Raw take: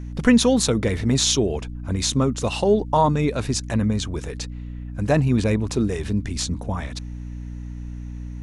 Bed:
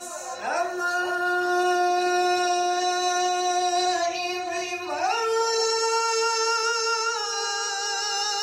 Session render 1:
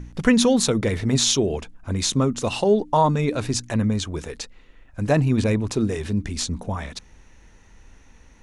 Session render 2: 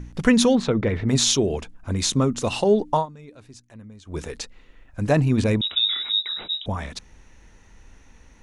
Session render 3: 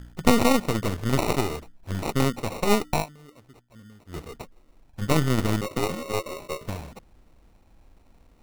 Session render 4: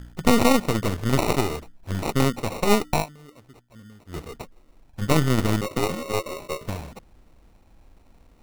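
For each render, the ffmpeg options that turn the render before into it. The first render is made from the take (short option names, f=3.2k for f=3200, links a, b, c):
-af "bandreject=f=60:t=h:w=4,bandreject=f=120:t=h:w=4,bandreject=f=180:t=h:w=4,bandreject=f=240:t=h:w=4,bandreject=f=300:t=h:w=4"
-filter_complex "[0:a]asettb=1/sr,asplit=3[a][b][c];[a]atrim=end=0.554[d];[b]atrim=start=0.55:end=1.09,asetpts=PTS-STARTPTS,afade=t=in:d=0.004:c=qsin,afade=t=out:st=0.536:d=0.004:c=qsin,lowpass=2.6k[e];[c]atrim=start=1.086[f];[d][e]acrossfade=d=0.004:c1=hsin:c2=qsin[g];[g][f]acrossfade=d=0.004:c1=qsin:c2=hsin,asettb=1/sr,asplit=3[h][i][j];[h]atrim=end=5.614[k];[i]atrim=start=5.61:end=6.66,asetpts=PTS-STARTPTS,afade=t=in:d=0.004:c=qsin,afade=t=out:st=1.046:d=0.004:c=qsin,lowpass=f=3.3k:t=q:w=0.5098,lowpass=f=3.3k:t=q:w=0.6013,lowpass=f=3.3k:t=q:w=0.9,lowpass=f=3.3k:t=q:w=2.563,afreqshift=-3900[l];[j]atrim=start=6.656[m];[k][l]acrossfade=d=0.004:c1=hsin:c2=qsin[n];[n][m]acrossfade=d=0.004:c1=qsin:c2=hsin,asplit=3[o][p][q];[o]atrim=end=3.06,asetpts=PTS-STARTPTS,afade=t=out:st=2.94:d=0.12:silence=0.0841395[r];[p]atrim=start=3.06:end=4.05,asetpts=PTS-STARTPTS,volume=-21.5dB[s];[q]atrim=start=4.05,asetpts=PTS-STARTPTS,afade=t=in:d=0.12:silence=0.0841395[t];[r][s][t]concat=n=3:v=0:a=1"
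-af "acrusher=samples=27:mix=1:aa=0.000001,aeval=exprs='0.562*(cos(1*acos(clip(val(0)/0.562,-1,1)))-cos(1*PI/2))+0.158*(cos(3*acos(clip(val(0)/0.562,-1,1)))-cos(3*PI/2))+0.112*(cos(4*acos(clip(val(0)/0.562,-1,1)))-cos(4*PI/2))+0.0398*(cos(5*acos(clip(val(0)/0.562,-1,1)))-cos(5*PI/2))':c=same"
-af "volume=2dB,alimiter=limit=-3dB:level=0:latency=1"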